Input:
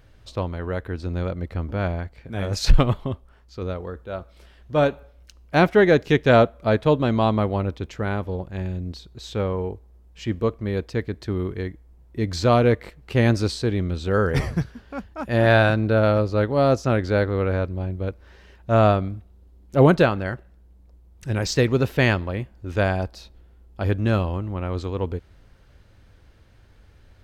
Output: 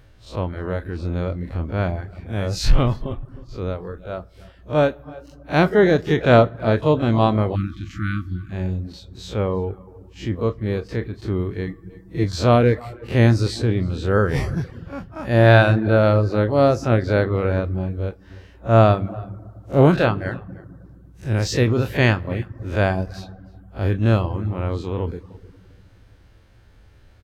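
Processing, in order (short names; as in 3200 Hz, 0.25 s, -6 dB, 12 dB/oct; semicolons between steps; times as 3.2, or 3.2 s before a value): time blur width 80 ms; 5.63–6.21 bell 2500 Hz -7.5 dB 0.25 oct; outdoor echo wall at 53 m, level -20 dB; on a send at -14 dB: reverb RT60 1.8 s, pre-delay 4 ms; on the sum: reverb removal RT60 0.5 s; 7.55–8.5 spectral delete 360–1100 Hz; 11.67–12.24 comb 6.2 ms, depth 99%; gain +4 dB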